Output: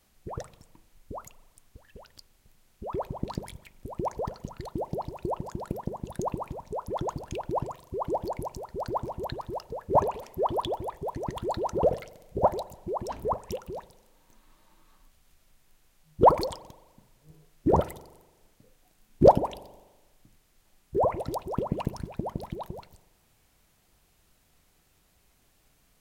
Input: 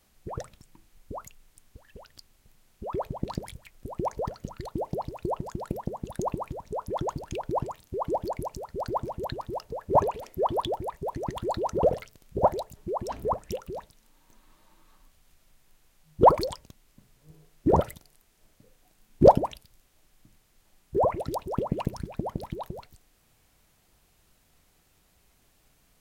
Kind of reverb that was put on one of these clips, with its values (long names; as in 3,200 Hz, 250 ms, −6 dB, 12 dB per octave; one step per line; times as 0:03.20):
spring reverb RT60 1.2 s, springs 41 ms, chirp 50 ms, DRR 19 dB
level −1 dB